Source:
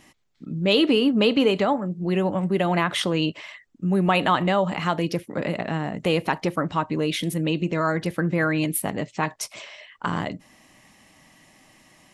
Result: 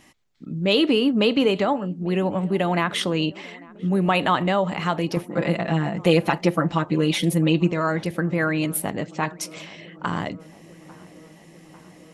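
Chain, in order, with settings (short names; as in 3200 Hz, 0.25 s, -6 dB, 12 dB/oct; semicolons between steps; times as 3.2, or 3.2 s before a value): 5.16–7.72 comb 5.9 ms, depth 96%; darkening echo 0.847 s, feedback 79%, low-pass 1600 Hz, level -23 dB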